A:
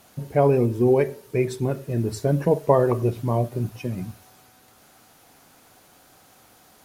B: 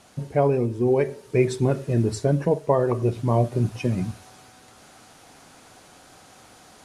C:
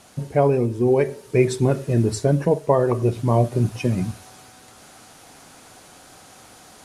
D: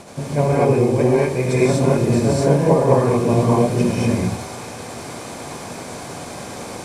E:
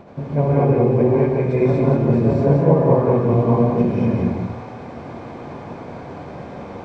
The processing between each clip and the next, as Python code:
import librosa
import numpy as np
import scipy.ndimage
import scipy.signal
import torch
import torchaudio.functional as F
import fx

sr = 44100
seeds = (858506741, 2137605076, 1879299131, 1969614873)

y1 = scipy.signal.sosfilt(scipy.signal.butter(4, 10000.0, 'lowpass', fs=sr, output='sos'), x)
y1 = fx.rider(y1, sr, range_db=5, speed_s=0.5)
y2 = fx.high_shelf(y1, sr, hz=9100.0, db=6.5)
y2 = F.gain(torch.from_numpy(y2), 2.5).numpy()
y3 = fx.bin_compress(y2, sr, power=0.6)
y3 = y3 * (1.0 - 0.44 / 2.0 + 0.44 / 2.0 * np.cos(2.0 * np.pi * 10.0 * (np.arange(len(y3)) / sr)))
y3 = fx.rev_gated(y3, sr, seeds[0], gate_ms=270, shape='rising', drr_db=-7.0)
y3 = F.gain(torch.from_numpy(y3), -4.5).numpy()
y4 = fx.spacing_loss(y3, sr, db_at_10k=41)
y4 = y4 + 10.0 ** (-4.0 / 20.0) * np.pad(y4, (int(175 * sr / 1000.0), 0))[:len(y4)]